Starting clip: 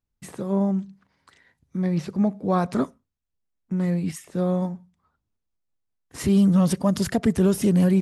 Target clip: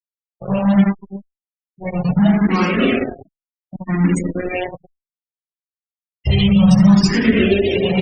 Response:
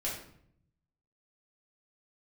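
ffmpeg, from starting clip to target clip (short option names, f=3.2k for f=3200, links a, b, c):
-filter_complex "[0:a]lowpass=6.9k,bandreject=f=60:t=h:w=6,bandreject=f=120:t=h:w=6,bandreject=f=180:t=h:w=6,bandreject=f=240:t=h:w=6,bandreject=f=300:t=h:w=6,bandreject=f=360:t=h:w=6,aecho=1:1:80|184|319.2|495|723.4:0.631|0.398|0.251|0.158|0.1[a];[1:a]atrim=start_sample=2205,asetrate=52920,aresample=44100[b];[a][b]afir=irnorm=-1:irlink=0,asettb=1/sr,asplit=3[c][d][e];[c]atrim=end=4.584[f];[d]atrim=start=4.58:end=7.1,asetpts=PTS-STARTPTS,afade=t=in:d=0.004:c=qsin,afade=t=out:st=2.516:d=0.004:c=qsin,asubboost=boost=9.5:cutoff=100[g];[e]atrim=start=7.096[h];[f][g]acrossfade=d=0.004:c1=hsin:c2=qsin[i];[i][h]acrossfade=d=0.004:c1=qsin:c2=hsin,acrusher=bits=3:mix=0:aa=0.5,alimiter=limit=-9.5dB:level=0:latency=1:release=95,afftdn=nr=35:nf=-30,highshelf=f=1.8k:t=q:w=1.5:g=11.5,afftfilt=real='re*gte(hypot(re,im),0.0178)':imag='im*gte(hypot(re,im),0.0178)':win_size=1024:overlap=0.75,asplit=2[j][k];[k]afreqshift=0.66[l];[j][l]amix=inputs=2:normalize=1,volume=7.5dB"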